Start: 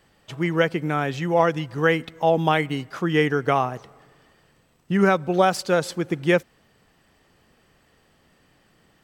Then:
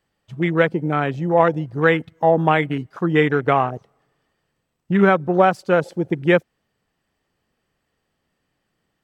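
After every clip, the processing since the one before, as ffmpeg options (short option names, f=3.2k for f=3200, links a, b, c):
-af "afwtdn=0.0316,volume=3.5dB"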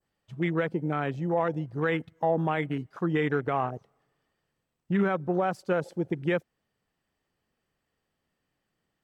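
-af "adynamicequalizer=threshold=0.0178:dfrequency=3100:dqfactor=0.77:tfrequency=3100:tqfactor=0.77:attack=5:release=100:ratio=0.375:range=2:mode=cutabove:tftype=bell,alimiter=limit=-9.5dB:level=0:latency=1:release=39,volume=-7dB"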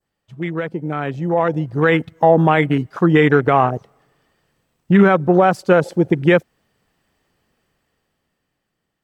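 -af "dynaudnorm=f=270:g=11:m=11dB,volume=3dB"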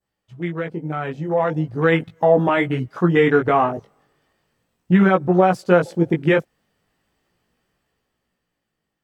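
-af "flanger=delay=16:depth=3.5:speed=0.38"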